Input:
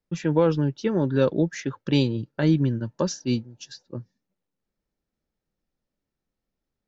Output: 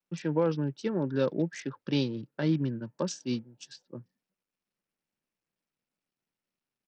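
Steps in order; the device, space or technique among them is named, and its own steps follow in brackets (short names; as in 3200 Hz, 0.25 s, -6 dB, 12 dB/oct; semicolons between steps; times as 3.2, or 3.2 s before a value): Bluetooth headset (HPF 130 Hz 24 dB/oct; downsampling 16000 Hz; gain -6.5 dB; SBC 64 kbps 44100 Hz)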